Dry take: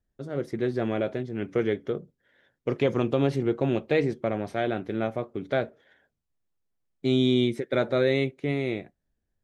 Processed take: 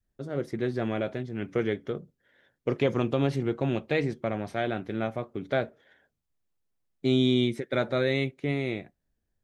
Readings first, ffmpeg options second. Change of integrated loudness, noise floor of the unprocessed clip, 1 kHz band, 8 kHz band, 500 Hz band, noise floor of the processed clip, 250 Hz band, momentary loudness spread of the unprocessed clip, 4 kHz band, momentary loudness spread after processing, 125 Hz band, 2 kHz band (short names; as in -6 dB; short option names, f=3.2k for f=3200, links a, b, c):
-2.0 dB, -81 dBFS, -1.0 dB, n/a, -2.5 dB, -80 dBFS, -1.5 dB, 10 LU, 0.0 dB, 9 LU, -0.5 dB, 0.0 dB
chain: -af "adynamicequalizer=threshold=0.0126:dfrequency=420:dqfactor=1.1:tfrequency=420:tqfactor=1.1:attack=5:release=100:ratio=0.375:range=2.5:mode=cutabove:tftype=bell"